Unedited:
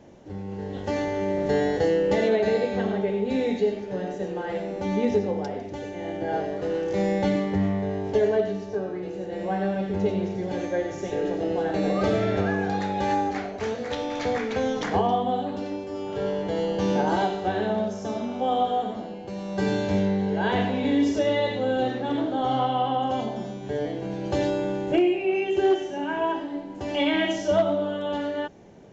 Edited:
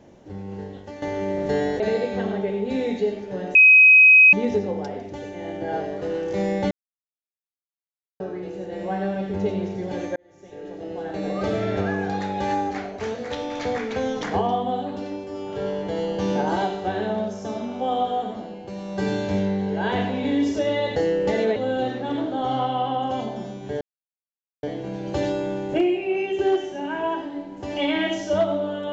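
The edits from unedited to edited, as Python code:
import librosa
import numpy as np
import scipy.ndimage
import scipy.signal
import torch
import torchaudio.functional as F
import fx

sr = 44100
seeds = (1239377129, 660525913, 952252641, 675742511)

y = fx.edit(x, sr, fx.fade_out_to(start_s=0.6, length_s=0.42, curve='qua', floor_db=-12.5),
    fx.move(start_s=1.8, length_s=0.6, to_s=21.56),
    fx.bleep(start_s=4.15, length_s=0.78, hz=2530.0, db=-8.0),
    fx.silence(start_s=7.31, length_s=1.49),
    fx.fade_in_span(start_s=10.76, length_s=1.63),
    fx.insert_silence(at_s=23.81, length_s=0.82), tone=tone)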